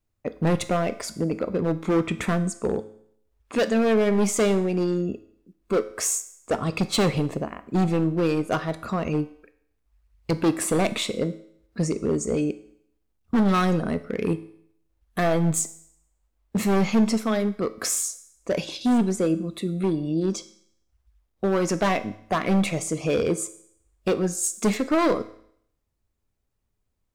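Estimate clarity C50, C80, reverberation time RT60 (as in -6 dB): 16.0 dB, 18.5 dB, 0.65 s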